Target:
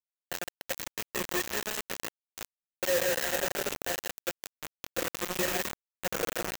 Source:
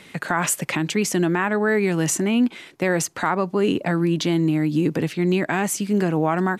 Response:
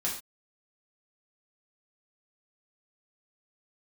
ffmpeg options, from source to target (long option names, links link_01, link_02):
-filter_complex "[0:a]acrossover=split=130|500|4200[link_01][link_02][link_03][link_04];[link_01]acompressor=threshold=-39dB:ratio=4[link_05];[link_02]acompressor=threshold=-27dB:ratio=4[link_06];[link_03]acompressor=threshold=-25dB:ratio=4[link_07];[link_04]acompressor=threshold=-32dB:ratio=4[link_08];[link_05][link_06][link_07][link_08]amix=inputs=4:normalize=0,asettb=1/sr,asplit=3[link_09][link_10][link_11];[link_09]atrim=end=3.044[link_12];[link_10]atrim=start=3.04:end=3.66,asetpts=PTS-STARTPTS,afade=type=in:duration=0.004:curve=qsin,afade=type=out:start_time=0.616:duration=0.004:curve=qsin,asplit=2[link_13][link_14];[link_14]highpass=frequency=720:poles=1,volume=17dB,asoftclip=type=tanh:threshold=-13.5dB[link_15];[link_13][link_15]amix=inputs=2:normalize=0,lowpass=frequency=3500:poles=1,volume=-6dB[link_16];[link_11]atrim=start=3.656[link_17];[link_12][link_16]acrossfade=duration=0.004:curve1=hsin:curve2=qsin[link_18];[link_18][link_17]acrossfade=duration=0.004:curve1=qsin:curve2=hsin,asplit=3[link_19][link_20][link_21];[link_19]bandpass=frequency=530:width_type=q:width=8,volume=0dB[link_22];[link_20]bandpass=frequency=1840:width_type=q:width=8,volume=-6dB[link_23];[link_21]bandpass=frequency=2480:width_type=q:width=8,volume=-9dB[link_24];[link_22][link_23][link_24]amix=inputs=3:normalize=0,aecho=1:1:161|322|483:0.596|0.143|0.0343,asplit=3[link_25][link_26][link_27];[link_25]afade=type=out:start_time=1.64:duration=0.02[link_28];[link_26]agate=range=-33dB:threshold=-31dB:ratio=3:detection=peak,afade=type=in:start_time=1.64:duration=0.02,afade=type=out:start_time=2.28:duration=0.02[link_29];[link_27]afade=type=in:start_time=2.28:duration=0.02[link_30];[link_28][link_29][link_30]amix=inputs=3:normalize=0,asettb=1/sr,asplit=3[link_31][link_32][link_33];[link_31]atrim=end=5.354[link_34];[link_32]atrim=start=5.35:end=5.81,asetpts=PTS-STARTPTS,afade=type=in:duration=0.004:curve=qsin,afade=type=out:start_time=0.456:duration=0.004:curve=qsin,lowshelf=frequency=420:gain=6.5[link_35];[link_33]atrim=start=5.806[link_36];[link_34][link_35]acrossfade=duration=0.004:curve1=hsin:curve2=qsin[link_37];[link_37][link_36]acrossfade=duration=0.004:curve1=qsin:curve2=hsin[link_38];[1:a]atrim=start_sample=2205[link_39];[link_38][link_39]afir=irnorm=-1:irlink=0,flanger=delay=7.9:depth=9.2:regen=-33:speed=0.7:shape=triangular,highshelf=frequency=8600:gain=-11,asplit=2[link_40][link_41];[link_41]adelay=367.3,volume=-22dB,highshelf=frequency=4000:gain=-8.27[link_42];[link_40][link_42]amix=inputs=2:normalize=0,acrusher=bits=4:mix=0:aa=0.000001,aexciter=amount=1.6:drive=5.9:freq=6200"